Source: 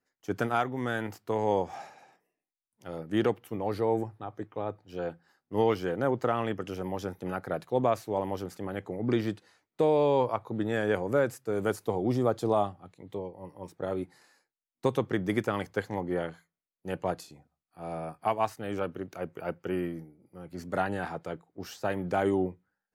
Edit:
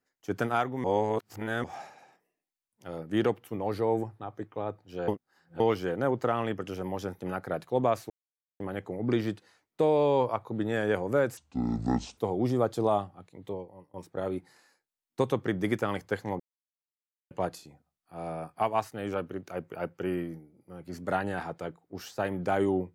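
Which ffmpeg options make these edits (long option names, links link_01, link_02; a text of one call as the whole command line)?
ffmpeg -i in.wav -filter_complex "[0:a]asplit=12[link_01][link_02][link_03][link_04][link_05][link_06][link_07][link_08][link_09][link_10][link_11][link_12];[link_01]atrim=end=0.842[link_13];[link_02]atrim=start=0.838:end=1.642,asetpts=PTS-STARTPTS,areverse[link_14];[link_03]atrim=start=1.638:end=5.082[link_15];[link_04]atrim=start=5.078:end=5.602,asetpts=PTS-STARTPTS,areverse[link_16];[link_05]atrim=start=5.598:end=8.1,asetpts=PTS-STARTPTS,afade=type=out:start_time=2.498:duration=0.004:curve=hsin[link_17];[link_06]atrim=start=8.1:end=8.6,asetpts=PTS-STARTPTS,volume=0[link_18];[link_07]atrim=start=8.6:end=11.374,asetpts=PTS-STARTPTS,afade=type=in:duration=0.004:curve=hsin[link_19];[link_08]atrim=start=11.37:end=11.83,asetpts=PTS-STARTPTS,asetrate=25137,aresample=44100,atrim=end_sample=35589,asetpts=PTS-STARTPTS[link_20];[link_09]atrim=start=11.826:end=13.59,asetpts=PTS-STARTPTS,afade=type=out:start_time=1.384:duration=0.38:silence=0.0707946[link_21];[link_10]atrim=start=13.59:end=16.05,asetpts=PTS-STARTPTS,afade=type=in:duration=0.004:curve=hsin:silence=0.0707946,afade=type=out:start_time=2.456:duration=0.004:curve=hsin[link_22];[link_11]atrim=start=16.05:end=16.96,asetpts=PTS-STARTPTS,volume=0[link_23];[link_12]atrim=start=16.96,asetpts=PTS-STARTPTS,afade=type=in:duration=0.004:curve=hsin[link_24];[link_13][link_14]acrossfade=duration=0.004:curve1=hsin:curve2=hsin[link_25];[link_25][link_15]acrossfade=duration=0.004:curve1=hsin:curve2=hsin[link_26];[link_26][link_16]acrossfade=duration=0.004:curve1=hsin:curve2=hsin[link_27];[link_17][link_18][link_19]concat=n=3:v=0:a=1[link_28];[link_27][link_28]acrossfade=duration=0.004:curve1=hsin:curve2=hsin[link_29];[link_29][link_20]acrossfade=duration=0.004:curve1=hsin:curve2=hsin[link_30];[link_21][link_22][link_23][link_24]concat=n=4:v=0:a=1[link_31];[link_30][link_31]acrossfade=duration=0.004:curve1=hsin:curve2=hsin" out.wav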